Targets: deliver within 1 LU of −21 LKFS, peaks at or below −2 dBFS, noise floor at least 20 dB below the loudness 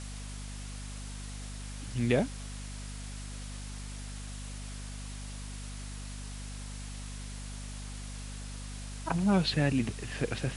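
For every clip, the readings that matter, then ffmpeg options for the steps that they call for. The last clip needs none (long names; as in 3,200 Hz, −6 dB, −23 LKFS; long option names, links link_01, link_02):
mains hum 50 Hz; hum harmonics up to 250 Hz; level of the hum −39 dBFS; background noise floor −41 dBFS; target noise floor −56 dBFS; integrated loudness −36.0 LKFS; sample peak −12.0 dBFS; target loudness −21.0 LKFS
→ -af "bandreject=frequency=50:width_type=h:width=6,bandreject=frequency=100:width_type=h:width=6,bandreject=frequency=150:width_type=h:width=6,bandreject=frequency=200:width_type=h:width=6,bandreject=frequency=250:width_type=h:width=6"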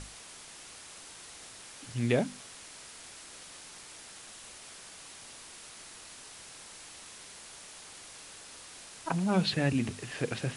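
mains hum none found; background noise floor −50 dBFS; target noise floor −58 dBFS
→ -af "afftdn=noise_reduction=8:noise_floor=-50"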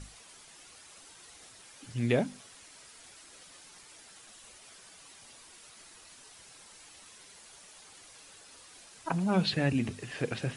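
background noise floor −54 dBFS; integrated loudness −31.0 LKFS; sample peak −12.5 dBFS; target loudness −21.0 LKFS
→ -af "volume=10dB"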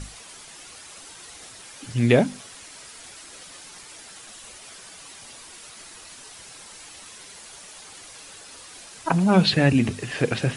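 integrated loudness −21.0 LKFS; sample peak −2.5 dBFS; background noise floor −44 dBFS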